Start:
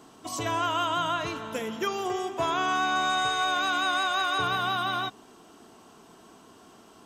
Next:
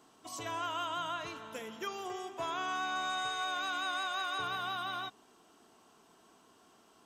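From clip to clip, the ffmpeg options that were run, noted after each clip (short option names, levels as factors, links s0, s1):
-af "lowshelf=f=410:g=-6,volume=0.376"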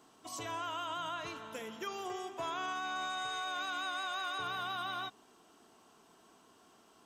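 -af "alimiter=level_in=2:limit=0.0631:level=0:latency=1,volume=0.501"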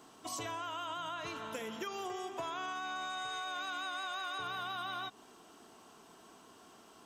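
-af "acompressor=threshold=0.00794:ratio=6,volume=1.78"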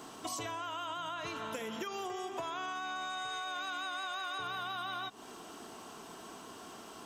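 -af "acompressor=threshold=0.00398:ratio=3,volume=2.82"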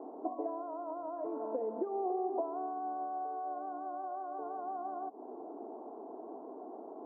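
-af "asuperpass=centerf=470:order=8:qfactor=0.84,volume=2.24"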